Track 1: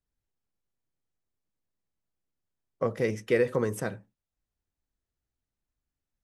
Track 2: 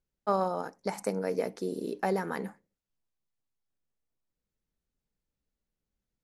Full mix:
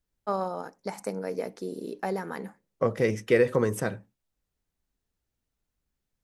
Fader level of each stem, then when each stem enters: +3.0, -1.5 dB; 0.00, 0.00 s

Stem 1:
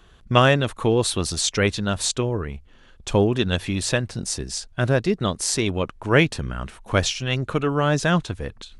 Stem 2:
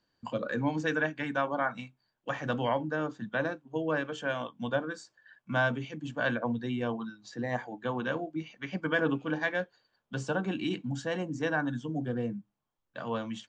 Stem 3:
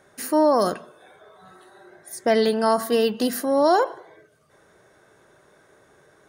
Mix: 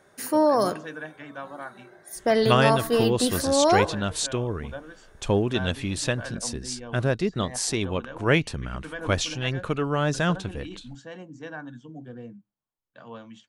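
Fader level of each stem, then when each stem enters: -4.0, -8.0, -2.0 dB; 2.15, 0.00, 0.00 s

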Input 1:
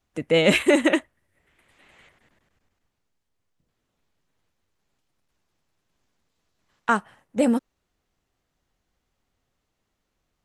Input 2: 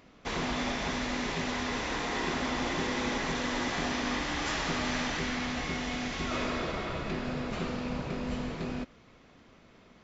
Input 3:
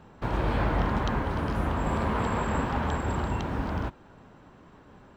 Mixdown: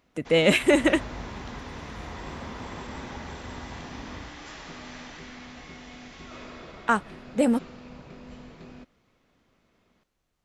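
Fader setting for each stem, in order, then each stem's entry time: -1.5, -10.5, -12.5 dB; 0.00, 0.00, 0.40 s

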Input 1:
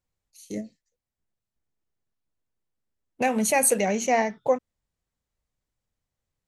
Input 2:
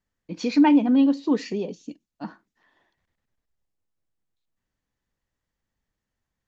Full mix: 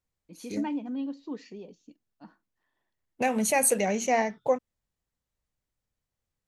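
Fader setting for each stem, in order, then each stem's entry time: -2.5, -15.0 dB; 0.00, 0.00 s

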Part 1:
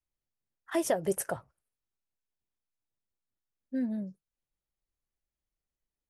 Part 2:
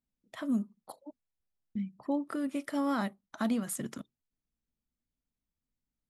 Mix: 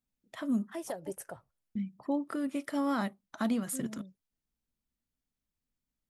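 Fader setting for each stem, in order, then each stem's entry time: -10.5, 0.0 dB; 0.00, 0.00 s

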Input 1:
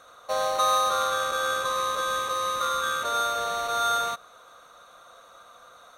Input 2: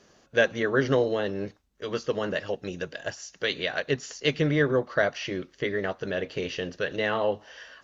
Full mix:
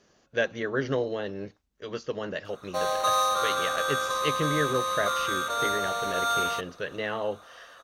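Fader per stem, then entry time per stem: -1.5, -4.5 dB; 2.45, 0.00 s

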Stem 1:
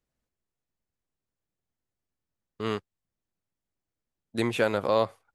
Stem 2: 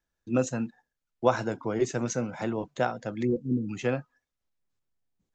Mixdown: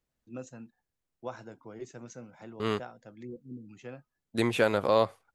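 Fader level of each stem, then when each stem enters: 0.0, -16.0 dB; 0.00, 0.00 s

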